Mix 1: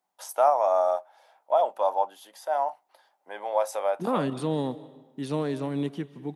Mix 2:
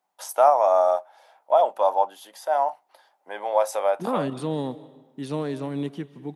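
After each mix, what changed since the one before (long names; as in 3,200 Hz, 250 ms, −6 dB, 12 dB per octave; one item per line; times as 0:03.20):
first voice +4.0 dB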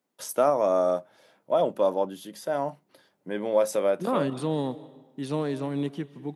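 first voice: remove high-pass with resonance 790 Hz, resonance Q 4.6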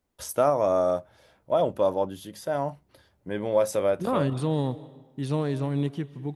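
master: remove high-pass filter 170 Hz 24 dB per octave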